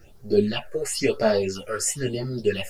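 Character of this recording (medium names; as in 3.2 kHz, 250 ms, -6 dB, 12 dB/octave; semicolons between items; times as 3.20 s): phasing stages 6, 0.99 Hz, lowest notch 210–2900 Hz; a quantiser's noise floor 12-bit, dither none; a shimmering, thickened sound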